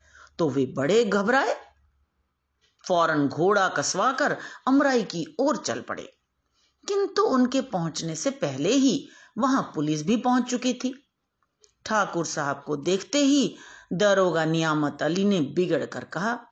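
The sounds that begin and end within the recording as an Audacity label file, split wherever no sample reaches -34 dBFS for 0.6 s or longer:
2.840000	6.060000	sound
6.880000	10.920000	sound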